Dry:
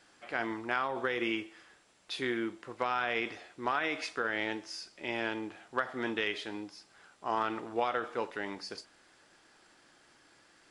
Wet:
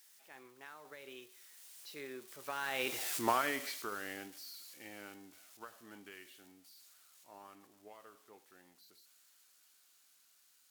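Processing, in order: zero-crossing glitches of -31.5 dBFS; Doppler pass-by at 3.14 s, 40 m/s, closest 6.7 m; trim +3.5 dB

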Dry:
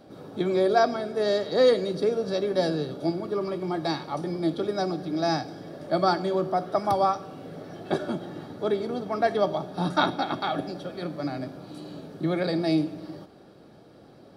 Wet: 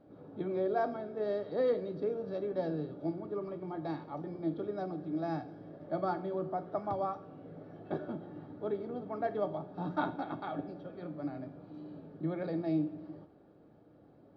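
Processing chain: tape spacing loss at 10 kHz 40 dB; FDN reverb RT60 0.35 s, high-frequency decay 0.9×, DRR 10.5 dB; trim -8 dB

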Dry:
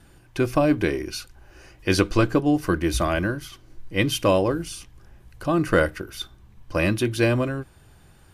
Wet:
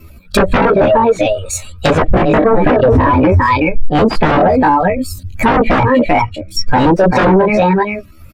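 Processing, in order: expander on every frequency bin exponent 1.5; reverb removal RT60 0.58 s; delay 394 ms -11.5 dB; chorus voices 6, 1.5 Hz, delay 17 ms, depth 3 ms; comb 4.8 ms, depth 35%; sine folder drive 17 dB, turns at -10 dBFS; pitch shift +7.5 st; peaking EQ 5.9 kHz -4 dB 1.3 oct; low-pass that closes with the level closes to 520 Hz, closed at -10 dBFS; loudness maximiser +16.5 dB; trim -3 dB

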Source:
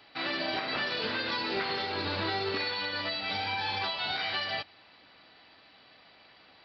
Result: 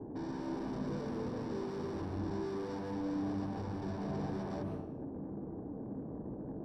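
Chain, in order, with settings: inverse Chebyshev low-pass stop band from 1.6 kHz, stop band 60 dB; peak limiter -42.5 dBFS, peak gain reduction 17 dB; valve stage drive 66 dB, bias 0.35; reverberation RT60 0.70 s, pre-delay 135 ms, DRR 2.5 dB; trim +14 dB

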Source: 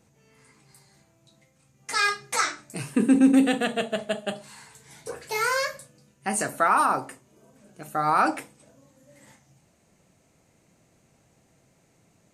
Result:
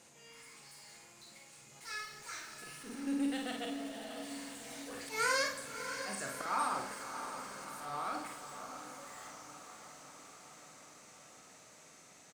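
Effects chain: Doppler pass-by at 5.39 s, 15 m/s, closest 10 m; low-pass 11 kHz 12 dB/octave; treble shelf 4.4 kHz +11.5 dB; slow attack 127 ms; overdrive pedal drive 34 dB, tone 5.2 kHz, clips at -42 dBFS; doubling 50 ms -5 dB; echo that smears into a reverb 637 ms, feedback 64%, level -9 dB; reverberation RT60 1.3 s, pre-delay 60 ms, DRR 15 dB; trim -3 dB

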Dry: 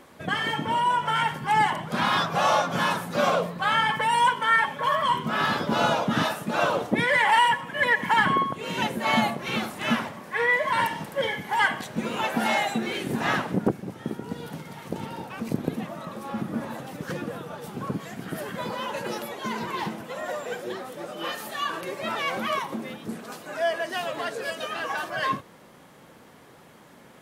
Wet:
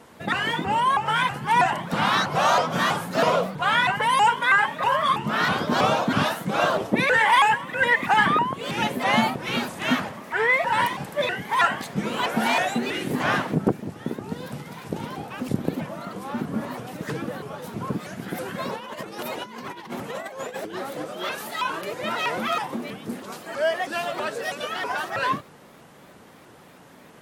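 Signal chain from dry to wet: 18.76–21.05 s: compressor with a negative ratio -35 dBFS, ratio -0.5; vibrato with a chosen wave saw up 3.1 Hz, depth 250 cents; trim +2 dB

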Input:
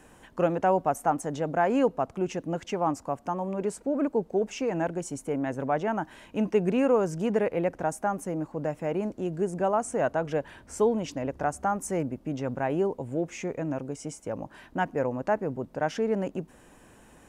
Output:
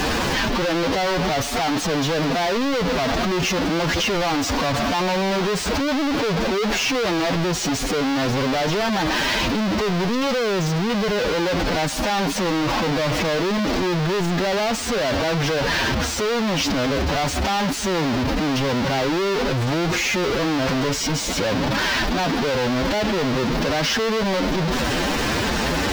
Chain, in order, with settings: one-bit comparator; resonant high shelf 6.8 kHz -11.5 dB, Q 1.5; time stretch by phase-locked vocoder 1.5×; trim +8 dB

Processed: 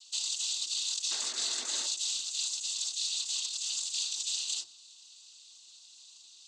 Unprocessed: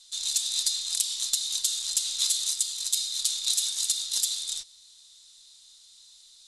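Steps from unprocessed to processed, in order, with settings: compressor with a negative ratio -31 dBFS, ratio -1; static phaser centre 510 Hz, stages 6; painted sound noise, 1.10–1.86 s, 240–2400 Hz -48 dBFS; noise-vocoded speech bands 16; on a send: reverberation RT60 0.60 s, pre-delay 4 ms, DRR 11 dB

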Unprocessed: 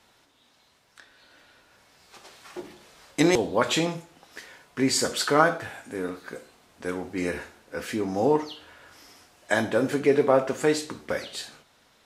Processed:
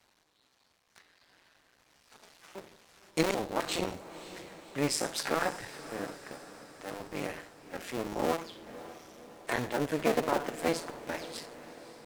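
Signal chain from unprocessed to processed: cycle switcher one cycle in 2, muted; pitch shift +1.5 st; echo that smears into a reverb 553 ms, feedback 59%, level -15 dB; trim -5 dB

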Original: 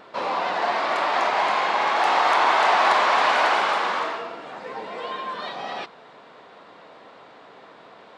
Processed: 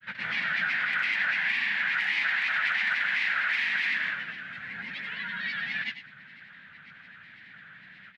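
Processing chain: FFT filter 200 Hz 0 dB, 410 Hz -29 dB, 1.2 kHz -21 dB, 1.7 kHz +9 dB, 6.1 kHz -14 dB; compression 10:1, threshold -25 dBFS, peak gain reduction 9 dB; granulator, grains 24 per s, pitch spread up and down by 3 st; on a send: delay 98 ms -10.5 dB; on the sum: trim +3 dB

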